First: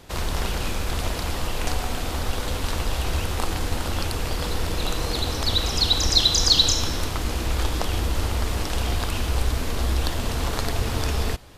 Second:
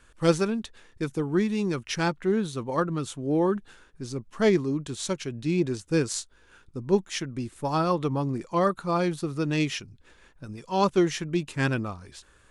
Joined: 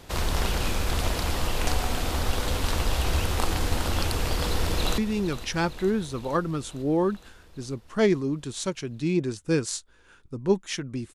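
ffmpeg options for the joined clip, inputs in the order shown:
-filter_complex "[0:a]apad=whole_dur=11.14,atrim=end=11.14,atrim=end=4.982[s0];[1:a]atrim=start=1.408:end=7.57[s1];[s0][s1]acrossfade=d=0.004:c1=hsin:c2=hsin,asplit=2[s2][s3];[s3]afade=t=in:st=4.49:d=0.01,afade=t=out:st=4.98:d=0.01,aecho=0:1:460|920|1380|1840|2300|2760|3220|3680|4140:0.223872|0.15671|0.109697|0.0767881|0.0537517|0.0376262|0.0263383|0.0184368|0.0129058[s4];[s2][s4]amix=inputs=2:normalize=0"

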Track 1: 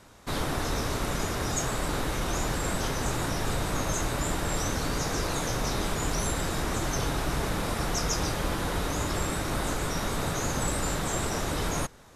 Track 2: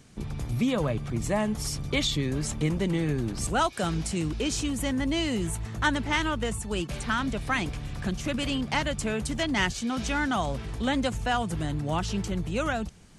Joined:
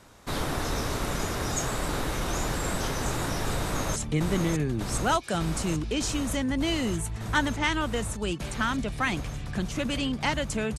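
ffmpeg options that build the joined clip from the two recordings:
-filter_complex "[0:a]apad=whole_dur=10.78,atrim=end=10.78,atrim=end=3.962[s0];[1:a]atrim=start=2.448:end=9.27[s1];[s0][s1]acrossfade=d=0.004:c1=hsin:c2=hsin,asplit=2[s2][s3];[s3]afade=t=in:st=3.6:d=0.01,afade=t=out:st=3.96:d=0.01,aecho=0:1:600|1200|1800|2400|3000|3600|4200|4800|5400|6000|6600|7200:0.630957|0.536314|0.455867|0.387487|0.329364|0.279959|0.237965|0.20227|0.17193|0.14614|0.124219|0.105586[s4];[s2][s4]amix=inputs=2:normalize=0"

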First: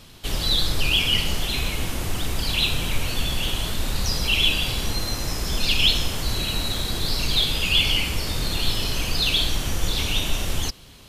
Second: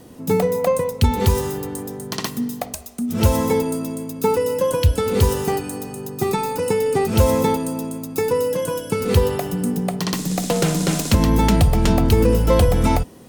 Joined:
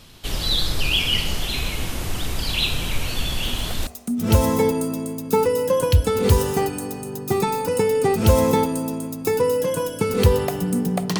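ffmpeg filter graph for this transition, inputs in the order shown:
-filter_complex "[1:a]asplit=2[s0][s1];[0:a]apad=whole_dur=11.19,atrim=end=11.19,atrim=end=3.872[s2];[s1]atrim=start=2.778:end=10.1[s3];[s0]atrim=start=2.35:end=2.78,asetpts=PTS-STARTPTS,volume=0.224,afade=t=in:d=0.004:c=hsin,afade=t=out:st=0.426:d=0.004:c=hsin,adelay=3440[s4];[s2][s3]acrossfade=d=0.004:c1=hsin:c2=hsin[s5];[s5][s4]amix=inputs=2:normalize=0"

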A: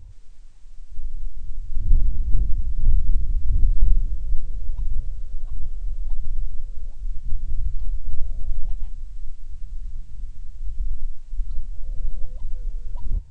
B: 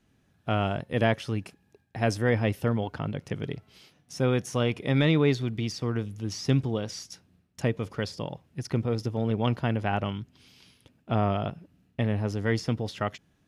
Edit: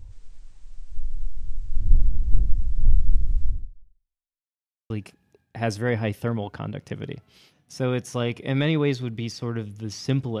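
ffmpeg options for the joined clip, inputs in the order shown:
-filter_complex "[0:a]apad=whole_dur=10.4,atrim=end=10.4,asplit=2[s0][s1];[s0]atrim=end=4.44,asetpts=PTS-STARTPTS,afade=t=out:st=3.46:d=0.98:c=exp[s2];[s1]atrim=start=4.44:end=4.9,asetpts=PTS-STARTPTS,volume=0[s3];[1:a]atrim=start=1.3:end=6.8,asetpts=PTS-STARTPTS,afade=t=in:d=0.004:c=hsin[s4];[s2][s3][s4]concat=n=3:v=0:a=1"

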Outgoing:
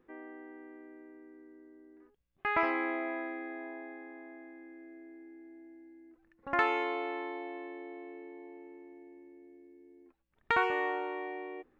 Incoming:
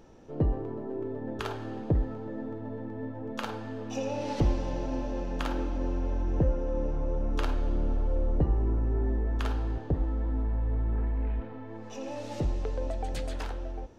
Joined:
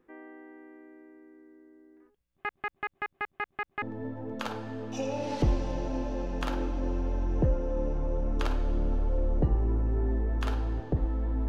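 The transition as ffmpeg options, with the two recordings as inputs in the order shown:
-filter_complex "[0:a]apad=whole_dur=11.48,atrim=end=11.48,asplit=8[s0][s1][s2][s3][s4][s5][s6][s7];[s0]atrim=end=2.492[s8];[s1]atrim=start=2.298:end=2.492[s9];[s2]atrim=start=2.298:end=2.492[s10];[s3]atrim=start=2.298:end=2.492[s11];[s4]atrim=start=2.298:end=2.492[s12];[s5]atrim=start=2.298:end=2.492[s13];[s6]atrim=start=2.298:end=2.492[s14];[s7]atrim=start=2.298:end=2.492[s15];[1:a]atrim=start=2.798:end=10.46[s16];[s8][s9]acrossfade=d=0.004:c1=hsin:c2=hsin[s17];[s17][s10]acrossfade=d=0.004:c1=hsin:c2=hsin[s18];[s18][s11]acrossfade=d=0.004:c1=hsin:c2=hsin[s19];[s19][s12]acrossfade=d=0.004:c1=hsin:c2=hsin[s20];[s20][s13]acrossfade=d=0.004:c1=hsin:c2=hsin[s21];[s21][s14]acrossfade=d=0.004:c1=hsin:c2=hsin[s22];[s22][s15]acrossfade=d=0.004:c1=hsin:c2=hsin[s23];[s23][s16]acrossfade=d=0.004:c1=hsin:c2=hsin"

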